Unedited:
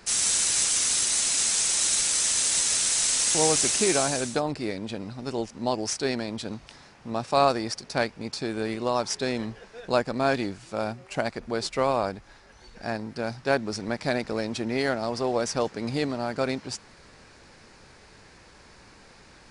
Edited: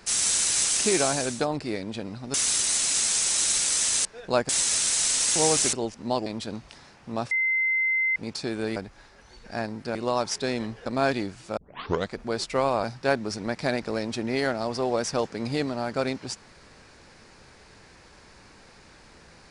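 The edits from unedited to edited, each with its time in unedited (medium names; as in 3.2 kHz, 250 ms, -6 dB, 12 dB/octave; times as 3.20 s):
3.72–5.29 s: move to 0.77 s
5.82–6.24 s: delete
7.29–8.14 s: bleep 2.07 kHz -21 dBFS
9.65–10.09 s: move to 2.48 s
10.80 s: tape start 0.55 s
12.07–13.26 s: move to 8.74 s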